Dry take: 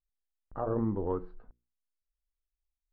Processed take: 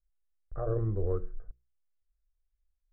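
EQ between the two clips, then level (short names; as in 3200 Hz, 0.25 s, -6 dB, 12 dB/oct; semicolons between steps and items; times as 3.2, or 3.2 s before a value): air absorption 370 m; low shelf 190 Hz +11 dB; fixed phaser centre 900 Hz, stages 6; 0.0 dB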